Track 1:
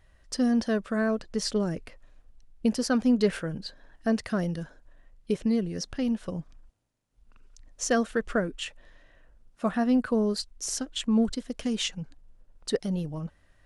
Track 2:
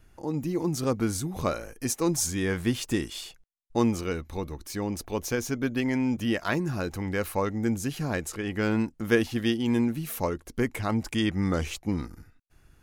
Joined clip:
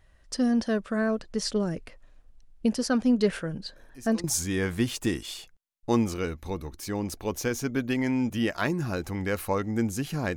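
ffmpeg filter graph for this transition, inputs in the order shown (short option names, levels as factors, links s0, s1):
-filter_complex "[1:a]asplit=2[s0][s1];[0:a]apad=whole_dur=10.36,atrim=end=10.36,atrim=end=4.242[s2];[s1]atrim=start=2.108:end=8.23[s3];[s0]atrim=start=1.63:end=2.11,asetpts=PTS-STARTPTS,volume=0.141,afade=t=in:d=0.004:c=hsin,afade=t=out:st=0.476:d=0.004:c=hsin,adelay=3760[s4];[s2][s3]acrossfade=d=0.004:c1=hsin:c2=hsin[s5];[s5][s4]amix=inputs=2:normalize=0"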